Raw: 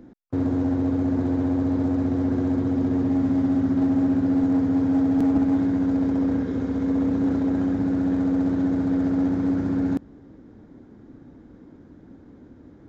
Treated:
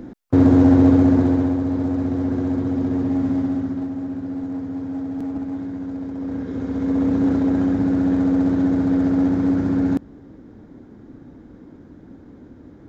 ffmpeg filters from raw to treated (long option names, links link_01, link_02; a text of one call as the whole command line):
ffmpeg -i in.wav -af "volume=21.5dB,afade=type=out:start_time=0.86:duration=0.73:silence=0.334965,afade=type=out:start_time=3.32:duration=0.59:silence=0.398107,afade=type=in:start_time=6.16:duration=1:silence=0.281838" out.wav